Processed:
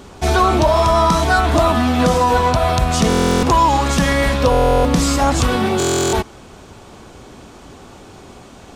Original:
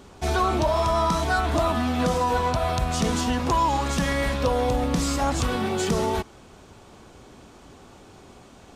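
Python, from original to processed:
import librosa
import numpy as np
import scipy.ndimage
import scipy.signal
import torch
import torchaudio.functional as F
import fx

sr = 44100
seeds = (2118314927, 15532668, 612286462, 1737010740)

y = fx.buffer_glitch(x, sr, at_s=(3.08, 4.5, 5.78), block=1024, repeats=14)
y = y * librosa.db_to_amplitude(8.5)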